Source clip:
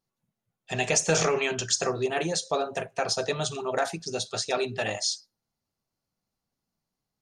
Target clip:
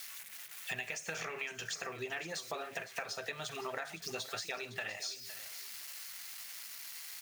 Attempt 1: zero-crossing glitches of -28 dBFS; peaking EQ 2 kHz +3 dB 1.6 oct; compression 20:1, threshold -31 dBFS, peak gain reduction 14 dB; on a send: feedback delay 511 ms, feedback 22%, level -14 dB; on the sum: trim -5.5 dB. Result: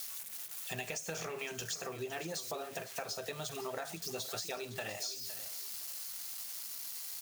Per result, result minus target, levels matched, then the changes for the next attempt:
2 kHz band -5.5 dB; zero-crossing glitches: distortion +6 dB
change: peaking EQ 2 kHz +15 dB 1.6 oct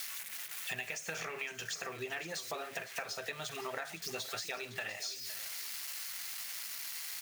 zero-crossing glitches: distortion +6 dB
change: zero-crossing glitches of -34 dBFS

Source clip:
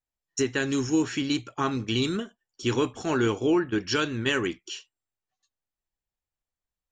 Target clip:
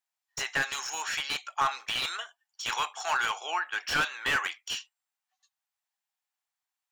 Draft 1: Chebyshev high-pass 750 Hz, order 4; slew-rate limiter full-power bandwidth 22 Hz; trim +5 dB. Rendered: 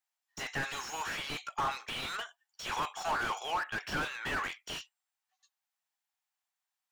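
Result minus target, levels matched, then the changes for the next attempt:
slew-rate limiter: distortion +9 dB
change: slew-rate limiter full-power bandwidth 76.5 Hz

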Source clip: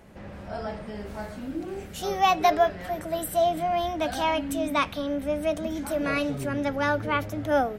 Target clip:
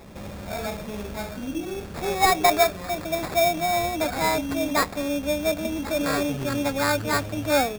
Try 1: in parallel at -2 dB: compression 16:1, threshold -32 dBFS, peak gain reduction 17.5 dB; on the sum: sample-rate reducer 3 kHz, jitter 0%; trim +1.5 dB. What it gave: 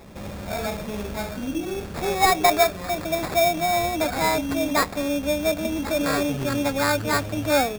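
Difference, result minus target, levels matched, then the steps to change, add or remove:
compression: peak gain reduction -10.5 dB
change: compression 16:1, threshold -43 dBFS, peak gain reduction 27.5 dB

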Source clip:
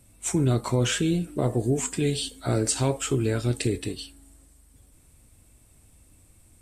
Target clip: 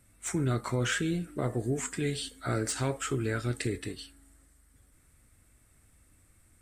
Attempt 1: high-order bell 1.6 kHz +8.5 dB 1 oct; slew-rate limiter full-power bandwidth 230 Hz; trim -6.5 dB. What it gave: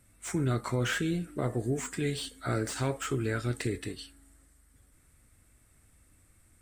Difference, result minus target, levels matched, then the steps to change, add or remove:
slew-rate limiter: distortion +9 dB
change: slew-rate limiter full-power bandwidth 650.5 Hz

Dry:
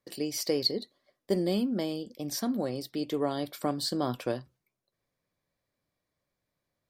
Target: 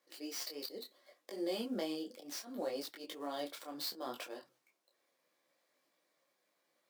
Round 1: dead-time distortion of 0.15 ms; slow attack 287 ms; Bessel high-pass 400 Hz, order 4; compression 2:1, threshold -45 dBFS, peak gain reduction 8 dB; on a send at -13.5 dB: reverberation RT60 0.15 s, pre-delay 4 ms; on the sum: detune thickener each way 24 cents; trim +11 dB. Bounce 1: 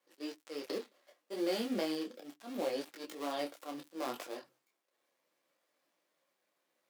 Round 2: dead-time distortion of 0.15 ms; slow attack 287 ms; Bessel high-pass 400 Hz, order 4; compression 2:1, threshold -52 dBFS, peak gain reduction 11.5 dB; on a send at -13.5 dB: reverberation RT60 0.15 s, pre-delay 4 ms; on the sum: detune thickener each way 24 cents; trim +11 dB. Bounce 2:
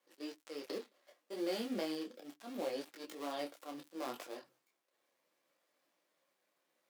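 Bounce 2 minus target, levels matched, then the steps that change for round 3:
dead-time distortion: distortion +5 dB
change: dead-time distortion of 0.046 ms

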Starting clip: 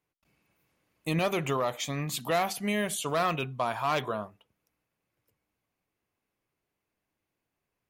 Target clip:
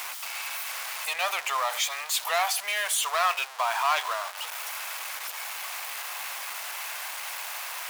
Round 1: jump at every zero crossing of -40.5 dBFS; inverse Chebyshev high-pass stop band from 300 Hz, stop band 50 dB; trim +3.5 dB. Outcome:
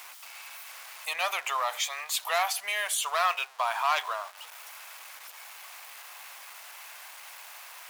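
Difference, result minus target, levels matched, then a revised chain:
jump at every zero crossing: distortion -9 dB
jump at every zero crossing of -30 dBFS; inverse Chebyshev high-pass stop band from 300 Hz, stop band 50 dB; trim +3.5 dB

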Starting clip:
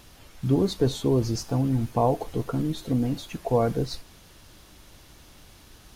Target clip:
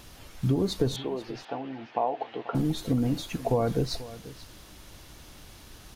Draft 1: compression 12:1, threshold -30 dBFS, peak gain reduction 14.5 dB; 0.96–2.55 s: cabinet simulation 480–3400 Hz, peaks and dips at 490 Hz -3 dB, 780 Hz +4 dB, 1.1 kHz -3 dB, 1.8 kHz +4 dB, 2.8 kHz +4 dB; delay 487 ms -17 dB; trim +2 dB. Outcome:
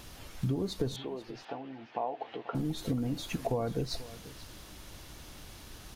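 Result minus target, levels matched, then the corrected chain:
compression: peak gain reduction +7 dB
compression 12:1, threshold -22.5 dBFS, peak gain reduction 7.5 dB; 0.96–2.55 s: cabinet simulation 480–3400 Hz, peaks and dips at 490 Hz -3 dB, 780 Hz +4 dB, 1.1 kHz -3 dB, 1.8 kHz +4 dB, 2.8 kHz +4 dB; delay 487 ms -17 dB; trim +2 dB

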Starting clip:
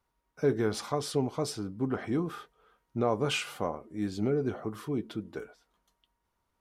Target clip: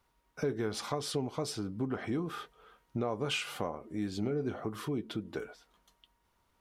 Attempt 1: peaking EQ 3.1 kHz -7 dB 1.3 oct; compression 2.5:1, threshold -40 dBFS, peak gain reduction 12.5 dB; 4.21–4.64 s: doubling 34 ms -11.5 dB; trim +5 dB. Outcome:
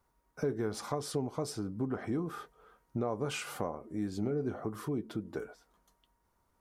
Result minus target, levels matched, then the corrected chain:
4 kHz band -6.0 dB
peaking EQ 3.1 kHz +3 dB 1.3 oct; compression 2.5:1, threshold -40 dBFS, peak gain reduction 13 dB; 4.21–4.64 s: doubling 34 ms -11.5 dB; trim +5 dB

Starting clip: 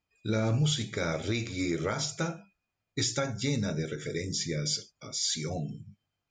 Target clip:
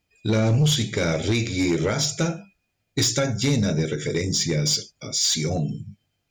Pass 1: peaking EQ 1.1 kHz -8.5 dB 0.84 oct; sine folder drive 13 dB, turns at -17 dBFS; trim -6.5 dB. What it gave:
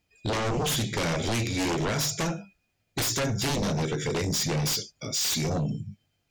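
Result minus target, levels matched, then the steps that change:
sine folder: distortion +18 dB
change: sine folder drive 13 dB, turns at -8.5 dBFS

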